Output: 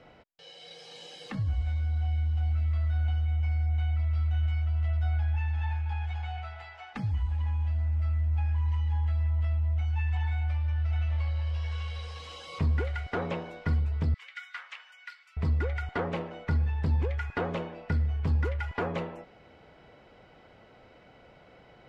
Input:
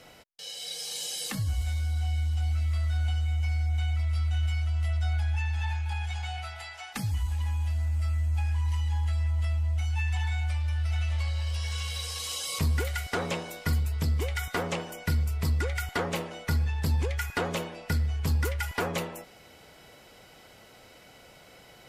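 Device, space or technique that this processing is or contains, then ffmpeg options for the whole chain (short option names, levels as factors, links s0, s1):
phone in a pocket: -filter_complex "[0:a]lowpass=3400,highshelf=f=2200:g=-9.5,asettb=1/sr,asplit=3[s0][s1][s2];[s0]atrim=end=14.144[s3];[s1]atrim=start=14.14:end=15.37,asetpts=PTS-STARTPTS,afade=t=in:d=0.004:c=qsin,afade=t=out:st=1.226:d=0.004:c=qsin,highpass=f=1500:w=0.5412,highpass=f=1500:w=1.3066[s4];[s2]atrim=start=15.366[s5];[s3][s4]acrossfade=d=0.004:c1=hsin:c2=qsin[s6];[s6][s5]acrossfade=d=0.004:c1=qsin:c2=hsin"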